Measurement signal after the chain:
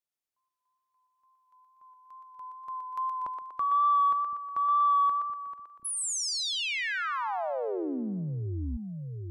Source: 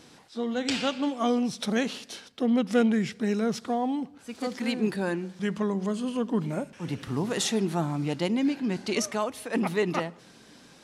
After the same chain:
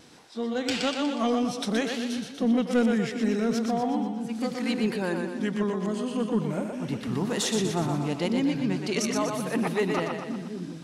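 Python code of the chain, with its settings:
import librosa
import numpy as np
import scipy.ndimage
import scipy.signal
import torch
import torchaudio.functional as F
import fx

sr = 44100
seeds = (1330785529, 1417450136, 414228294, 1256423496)

y = fx.echo_split(x, sr, split_hz=320.0, low_ms=734, high_ms=121, feedback_pct=52, wet_db=-5)
y = 10.0 ** (-13.0 / 20.0) * np.tanh(y / 10.0 ** (-13.0 / 20.0))
y = fx.wow_flutter(y, sr, seeds[0], rate_hz=2.1, depth_cents=19.0)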